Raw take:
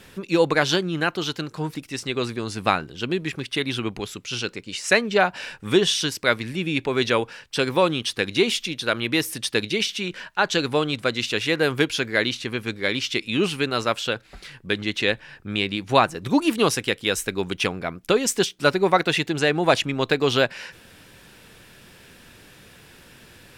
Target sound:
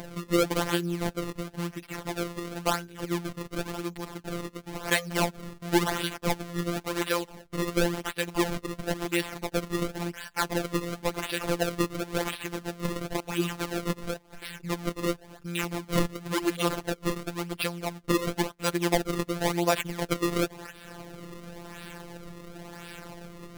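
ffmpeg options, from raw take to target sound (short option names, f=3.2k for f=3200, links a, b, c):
-af "acompressor=mode=upward:threshold=-24dB:ratio=2.5,acrusher=samples=32:mix=1:aa=0.000001:lfo=1:lforange=51.2:lforate=0.95,afftfilt=real='hypot(re,im)*cos(PI*b)':imag='0':win_size=1024:overlap=0.75,volume=-3dB"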